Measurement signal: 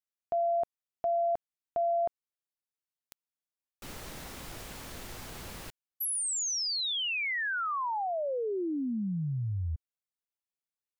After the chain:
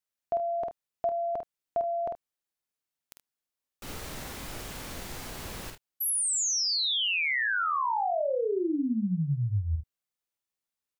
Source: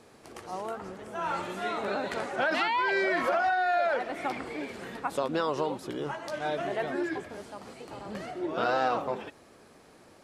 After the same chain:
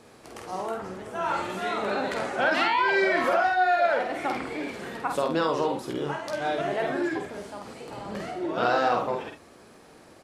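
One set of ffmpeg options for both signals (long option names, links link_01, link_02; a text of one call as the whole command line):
ffmpeg -i in.wav -af "aecho=1:1:49|76:0.596|0.188,volume=2.5dB" out.wav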